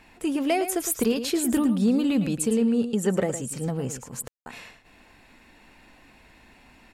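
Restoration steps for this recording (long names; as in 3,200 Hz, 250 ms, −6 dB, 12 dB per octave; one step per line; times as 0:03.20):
clipped peaks rebuilt −13.5 dBFS
ambience match 0:04.28–0:04.46
echo removal 110 ms −10.5 dB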